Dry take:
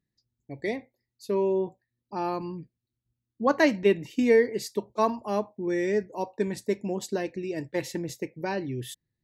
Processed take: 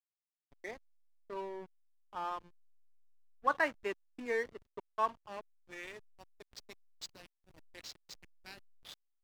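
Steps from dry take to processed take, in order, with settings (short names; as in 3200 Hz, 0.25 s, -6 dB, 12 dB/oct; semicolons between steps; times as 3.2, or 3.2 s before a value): dynamic EQ 2900 Hz, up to +4 dB, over -50 dBFS, Q 3; band-pass sweep 1300 Hz -> 4500 Hz, 4.95–6.23; backlash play -40 dBFS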